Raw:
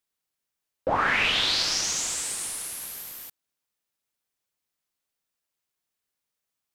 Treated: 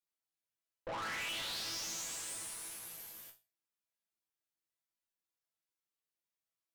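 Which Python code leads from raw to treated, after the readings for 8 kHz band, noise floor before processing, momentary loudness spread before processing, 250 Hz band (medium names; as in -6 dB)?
-13.0 dB, -85 dBFS, 16 LU, -15.0 dB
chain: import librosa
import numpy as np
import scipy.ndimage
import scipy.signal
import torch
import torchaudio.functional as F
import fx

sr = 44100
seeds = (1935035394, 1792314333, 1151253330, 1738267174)

y = fx.resonator_bank(x, sr, root=45, chord='fifth', decay_s=0.29)
y = fx.tube_stage(y, sr, drive_db=43.0, bias=0.65)
y = y * librosa.db_to_amplitude(5.0)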